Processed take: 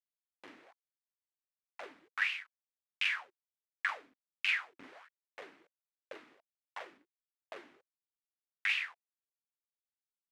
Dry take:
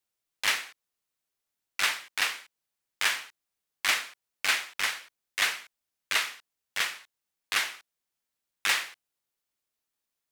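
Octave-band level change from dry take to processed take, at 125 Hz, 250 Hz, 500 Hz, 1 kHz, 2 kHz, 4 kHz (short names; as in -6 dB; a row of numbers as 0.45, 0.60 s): n/a, -6.0 dB, -6.5 dB, -11.0 dB, -7.5 dB, -12.5 dB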